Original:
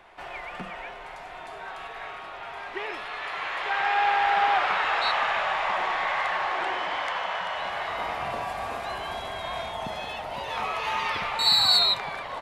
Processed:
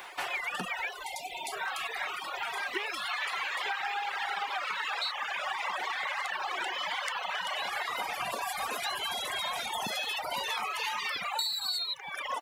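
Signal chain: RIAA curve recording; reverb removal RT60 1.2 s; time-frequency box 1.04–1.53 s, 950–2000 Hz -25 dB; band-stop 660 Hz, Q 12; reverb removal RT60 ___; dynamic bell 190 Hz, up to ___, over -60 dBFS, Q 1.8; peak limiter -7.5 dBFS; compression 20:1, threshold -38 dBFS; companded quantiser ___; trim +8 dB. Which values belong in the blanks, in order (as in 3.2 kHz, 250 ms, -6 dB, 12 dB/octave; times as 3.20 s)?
1.2 s, +3 dB, 8-bit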